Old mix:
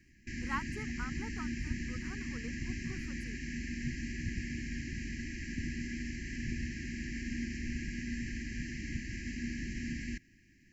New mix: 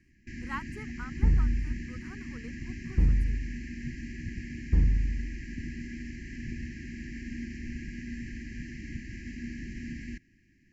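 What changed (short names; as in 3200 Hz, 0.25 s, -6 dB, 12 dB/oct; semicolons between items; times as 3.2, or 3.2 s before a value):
first sound: add high shelf 2900 Hz -8 dB; second sound: unmuted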